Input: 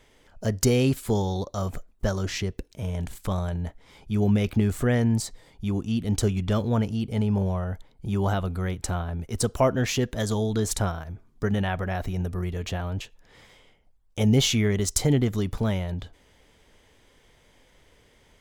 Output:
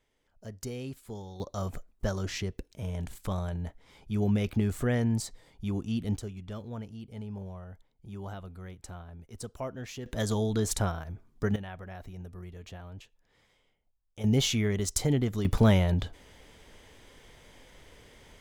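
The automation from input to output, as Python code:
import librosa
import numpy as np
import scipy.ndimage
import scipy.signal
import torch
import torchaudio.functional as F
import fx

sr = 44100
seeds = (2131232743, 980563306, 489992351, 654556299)

y = fx.gain(x, sr, db=fx.steps((0.0, -17.0), (1.4, -5.0), (6.17, -15.5), (10.06, -3.0), (11.56, -14.5), (14.24, -5.0), (15.45, 4.5)))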